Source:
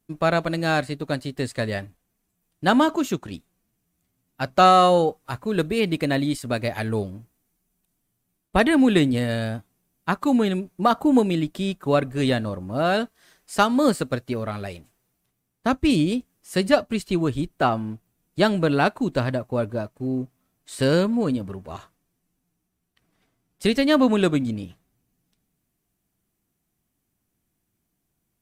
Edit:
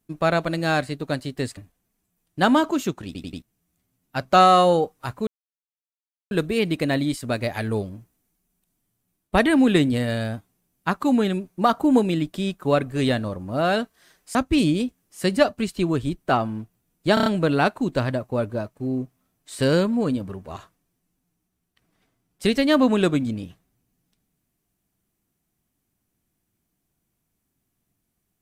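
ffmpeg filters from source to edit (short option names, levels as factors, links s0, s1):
-filter_complex "[0:a]asplit=12[s0][s1][s2][s3][s4][s5][s6][s7][s8][s9][s10][s11];[s0]atrim=end=1.572[s12];[s1]atrim=start=1.818:end=3.402[s13];[s2]atrim=start=3.308:end=3.402[s14];[s3]atrim=start=3.308:end=3.402[s15];[s4]atrim=start=3.308:end=3.402[s16];[s5]atrim=start=3.668:end=5.52,asetpts=PTS-STARTPTS,afade=t=out:st=1.848:d=0.004:c=hsin,apad=pad_dur=1.04[s17];[s6]atrim=start=5.52:end=13.562,asetpts=PTS-STARTPTS,afade=t=in:d=0.004:c=hsin[s18];[s7]atrim=start=15.668:end=18.492[s19];[s8]atrim=start=18.458:end=18.492[s20];[s9]atrim=start=18.458:end=18.492[s21];[s10]atrim=start=18.458:end=18.492[s22];[s11]atrim=start=18.458[s23];[s12][s13]acrossfade=d=0.004:c1=hsin:c2=hsin[s24];[s24][s14]acrossfade=d=0.004:c1=hsin:c2=hsin[s25];[s25][s15]acrossfade=d=0.004:c1=hsin:c2=hsin[s26];[s26][s16]acrossfade=d=0.004:c1=hsin:c2=hsin[s27];[s17][s18]concat=n=2:v=0:a=1[s28];[s27][s28]acrossfade=d=0.004:c1=hsin:c2=hsin[s29];[s29][s19]acrossfade=d=0.004:c1=hsin:c2=hsin[s30];[s30][s20]acrossfade=d=0.004:c1=hsin:c2=hsin[s31];[s31][s21]acrossfade=d=0.004:c1=hsin:c2=hsin[s32];[s32][s22]acrossfade=d=0.004:c1=hsin:c2=hsin[s33];[s33][s23]acrossfade=d=0.004:c1=hsin:c2=hsin"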